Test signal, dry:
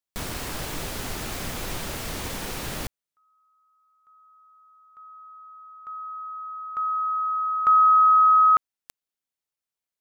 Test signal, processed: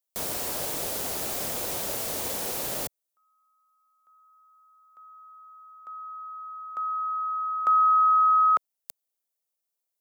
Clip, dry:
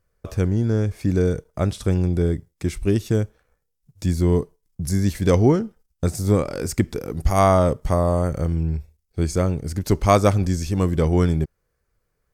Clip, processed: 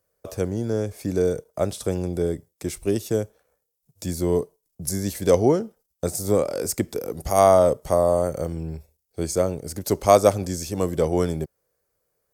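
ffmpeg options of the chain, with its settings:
-filter_complex "[0:a]highpass=f=110:p=1,equalizer=f=580:w=1:g=10.5,acrossover=split=220|2100[s0][s1][s2];[s2]crystalizer=i=2.5:c=0[s3];[s0][s1][s3]amix=inputs=3:normalize=0,volume=0.473"

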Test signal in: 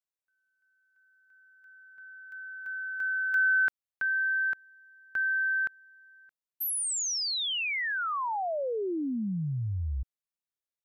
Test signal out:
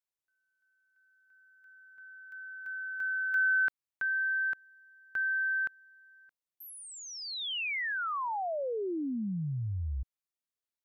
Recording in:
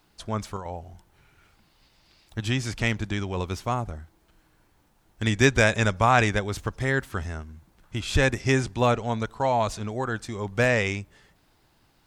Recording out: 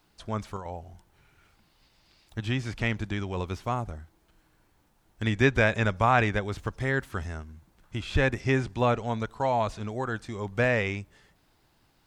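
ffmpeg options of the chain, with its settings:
-filter_complex "[0:a]acrossover=split=3700[s0][s1];[s1]acompressor=threshold=0.00447:ratio=4:attack=1:release=60[s2];[s0][s2]amix=inputs=2:normalize=0,volume=0.75"

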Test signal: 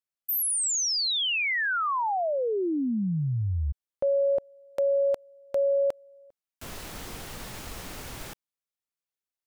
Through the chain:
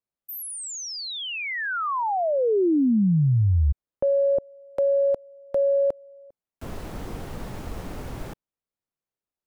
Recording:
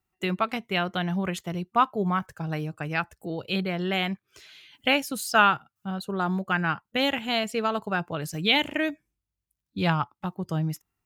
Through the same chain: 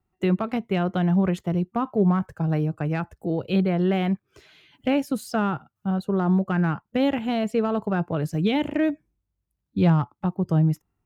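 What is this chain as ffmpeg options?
-filter_complex "[0:a]tiltshelf=f=1400:g=8,acrossover=split=430[s0][s1];[s1]acompressor=threshold=0.0794:ratio=6:attack=0.26:release=86:knee=2.83:detection=peak[s2];[s0][s2]amix=inputs=2:normalize=0"

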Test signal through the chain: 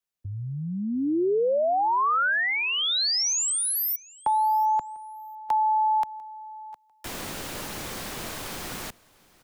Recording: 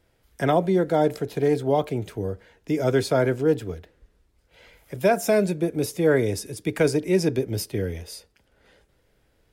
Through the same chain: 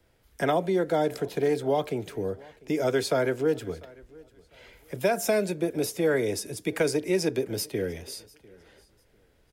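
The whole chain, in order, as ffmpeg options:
-filter_complex "[0:a]acrossover=split=150|310|1700|3800[s0][s1][s2][s3][s4];[s0]acompressor=threshold=0.00562:ratio=4[s5];[s1]acompressor=threshold=0.0158:ratio=4[s6];[s2]acompressor=threshold=0.0794:ratio=4[s7];[s3]acompressor=threshold=0.0178:ratio=4[s8];[s4]acompressor=threshold=0.0501:ratio=4[s9];[s5][s6][s7][s8][s9]amix=inputs=5:normalize=0,asplit=2[s10][s11];[s11]aecho=0:1:697|1394:0.0631|0.0151[s12];[s10][s12]amix=inputs=2:normalize=0"

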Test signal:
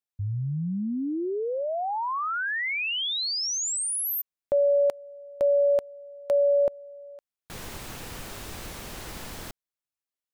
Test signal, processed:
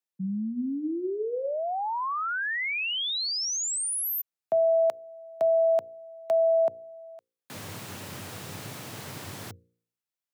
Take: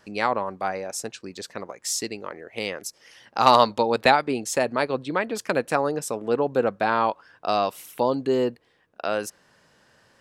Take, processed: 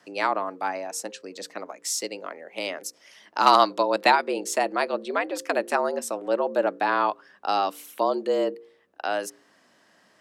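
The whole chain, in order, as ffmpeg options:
-af "afreqshift=88,bandreject=f=58.28:t=h:w=4,bandreject=f=116.56:t=h:w=4,bandreject=f=174.84:t=h:w=4,bandreject=f=233.12:t=h:w=4,bandreject=f=291.4:t=h:w=4,bandreject=f=349.68:t=h:w=4,bandreject=f=407.96:t=h:w=4,bandreject=f=466.24:t=h:w=4,bandreject=f=524.52:t=h:w=4,volume=0.891"

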